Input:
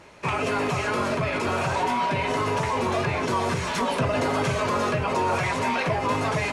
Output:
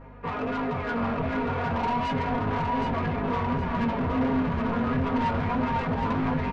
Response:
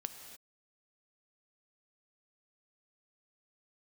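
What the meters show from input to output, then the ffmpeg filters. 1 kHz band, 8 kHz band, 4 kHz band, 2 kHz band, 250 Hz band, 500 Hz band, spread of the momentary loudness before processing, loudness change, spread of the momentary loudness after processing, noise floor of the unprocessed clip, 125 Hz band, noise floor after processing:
-3.0 dB, under -20 dB, -9.5 dB, -6.5 dB, +3.0 dB, -5.5 dB, 1 LU, -2.5 dB, 3 LU, -29 dBFS, -0.5 dB, -32 dBFS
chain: -af "lowpass=1400,aemphasis=mode=reproduction:type=cd,aecho=1:1:4.2:0.99,asubboost=boost=5.5:cutoff=190,acontrast=47,flanger=delay=18.5:depth=5.1:speed=0.34,aeval=exprs='val(0)+0.01*(sin(2*PI*50*n/s)+sin(2*PI*2*50*n/s)/2+sin(2*PI*3*50*n/s)/3+sin(2*PI*4*50*n/s)/4+sin(2*PI*5*50*n/s)/5)':c=same,asoftclip=type=tanh:threshold=0.0944,flanger=delay=7.4:depth=1.6:regen=53:speed=1.4:shape=triangular,aecho=1:1:768|1536|2304|3072:0.562|0.202|0.0729|0.0262"

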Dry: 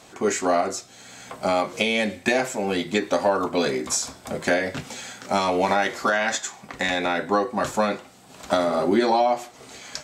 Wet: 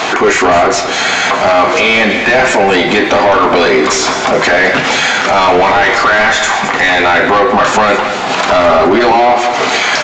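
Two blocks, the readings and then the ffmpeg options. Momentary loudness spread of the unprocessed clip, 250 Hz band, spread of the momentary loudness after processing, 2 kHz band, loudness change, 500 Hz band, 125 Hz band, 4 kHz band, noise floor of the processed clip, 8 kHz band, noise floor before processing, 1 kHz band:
13 LU, +11.0 dB, 3 LU, +18.0 dB, +14.5 dB, +13.0 dB, +11.5 dB, +16.0 dB, -15 dBFS, +11.0 dB, -49 dBFS, +15.5 dB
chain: -filter_complex "[0:a]lowshelf=f=220:g=-5,bandreject=f=550:w=12,asplit=2[s0][s1];[s1]highpass=f=720:p=1,volume=17.8,asoftclip=type=tanh:threshold=0.447[s2];[s0][s2]amix=inputs=2:normalize=0,lowpass=f=4400:p=1,volume=0.501,acompressor=threshold=0.0447:ratio=4,bass=f=250:g=1,treble=f=4000:g=-9,asplit=2[s3][s4];[s4]aecho=0:1:211|422|633|844:0.266|0.109|0.0447|0.0183[s5];[s3][s5]amix=inputs=2:normalize=0,aresample=16000,aresample=44100,asplit=2[s6][s7];[s7]adelay=100,highpass=300,lowpass=3400,asoftclip=type=hard:threshold=0.0562,volume=0.1[s8];[s6][s8]amix=inputs=2:normalize=0,alimiter=level_in=12.6:limit=0.891:release=50:level=0:latency=1,volume=0.841"

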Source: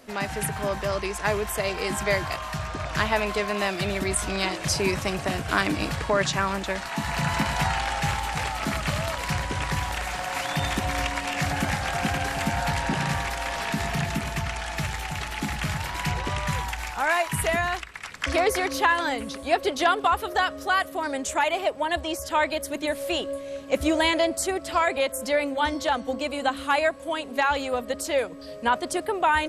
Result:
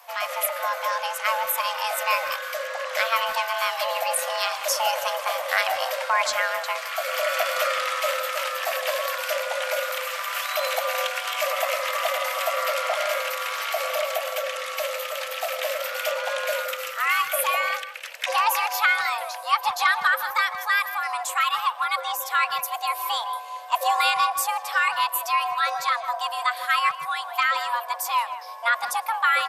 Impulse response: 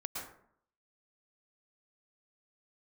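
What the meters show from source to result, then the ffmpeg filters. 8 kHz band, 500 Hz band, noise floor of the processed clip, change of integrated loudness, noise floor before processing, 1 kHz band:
+1.0 dB, -1.5 dB, -36 dBFS, +1.5 dB, -39 dBFS, +3.0 dB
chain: -filter_complex "[0:a]afreqshift=460,aexciter=amount=4.1:drive=7.2:freq=12000,asplit=2[s0][s1];[s1]adelay=160,highpass=300,lowpass=3400,asoftclip=type=hard:threshold=0.141,volume=0.251[s2];[s0][s2]amix=inputs=2:normalize=0,asplit=2[s3][s4];[1:a]atrim=start_sample=2205[s5];[s4][s5]afir=irnorm=-1:irlink=0,volume=0.0891[s6];[s3][s6]amix=inputs=2:normalize=0"

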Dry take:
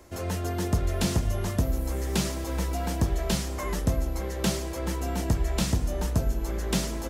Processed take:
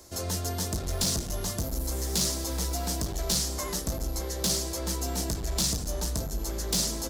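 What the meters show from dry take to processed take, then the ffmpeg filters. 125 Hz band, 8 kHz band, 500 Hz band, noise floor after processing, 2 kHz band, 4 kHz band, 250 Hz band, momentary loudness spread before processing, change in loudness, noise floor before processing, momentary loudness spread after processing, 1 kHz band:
-5.0 dB, +7.0 dB, -3.5 dB, -35 dBFS, -5.0 dB, +5.0 dB, -5.0 dB, 5 LU, -0.5 dB, -33 dBFS, 5 LU, -3.5 dB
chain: -af "asoftclip=type=hard:threshold=0.0562,highshelf=f=3400:t=q:w=1.5:g=9,bandreject=f=50:t=h:w=6,bandreject=f=100:t=h:w=6,bandreject=f=150:t=h:w=6,bandreject=f=200:t=h:w=6,bandreject=f=250:t=h:w=6,bandreject=f=300:t=h:w=6,bandreject=f=350:t=h:w=6,volume=0.841"

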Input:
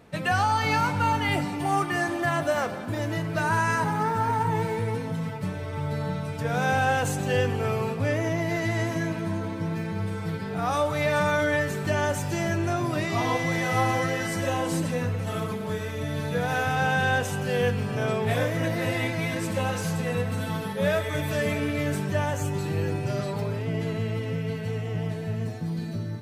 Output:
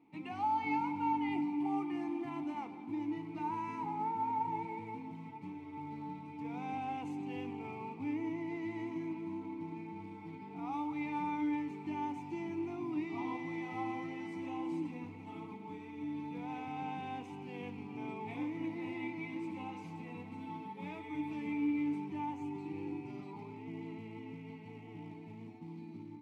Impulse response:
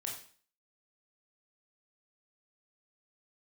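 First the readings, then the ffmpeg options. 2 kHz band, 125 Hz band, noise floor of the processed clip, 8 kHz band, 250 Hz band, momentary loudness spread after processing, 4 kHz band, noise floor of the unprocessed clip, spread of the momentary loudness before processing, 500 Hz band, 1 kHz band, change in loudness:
-20.5 dB, -22.5 dB, -49 dBFS, under -30 dB, -7.5 dB, 12 LU, -22.0 dB, -33 dBFS, 7 LU, -19.5 dB, -11.0 dB, -13.0 dB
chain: -filter_complex "[0:a]acrusher=bits=5:mode=log:mix=0:aa=0.000001,asplit=3[s0][s1][s2];[s0]bandpass=f=300:t=q:w=8,volume=1[s3];[s1]bandpass=f=870:t=q:w=8,volume=0.501[s4];[s2]bandpass=f=2240:t=q:w=8,volume=0.355[s5];[s3][s4][s5]amix=inputs=3:normalize=0,volume=0.891"

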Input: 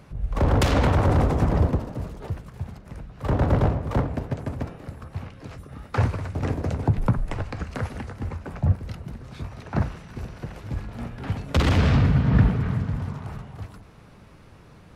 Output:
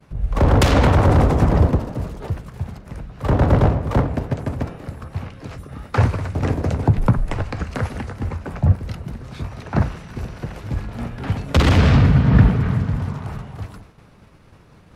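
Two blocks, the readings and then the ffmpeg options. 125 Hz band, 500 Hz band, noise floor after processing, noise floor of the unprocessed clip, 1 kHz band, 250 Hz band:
+5.5 dB, +5.5 dB, -49 dBFS, -49 dBFS, +5.5 dB, +5.5 dB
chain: -af "agate=range=0.0224:threshold=0.00708:ratio=3:detection=peak,volume=1.88"

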